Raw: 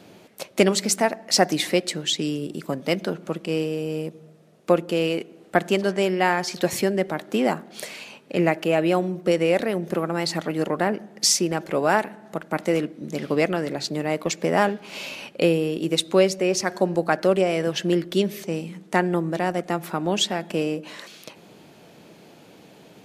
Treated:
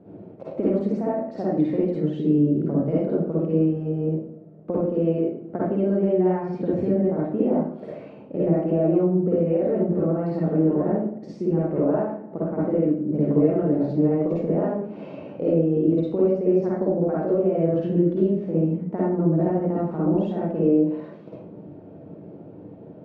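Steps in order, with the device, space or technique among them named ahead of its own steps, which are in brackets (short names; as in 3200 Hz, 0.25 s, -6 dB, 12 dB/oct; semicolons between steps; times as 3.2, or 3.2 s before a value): television next door (compressor, threshold -23 dBFS, peak gain reduction 11.5 dB; LPF 520 Hz 12 dB/oct; reverb RT60 0.50 s, pre-delay 47 ms, DRR -7.5 dB)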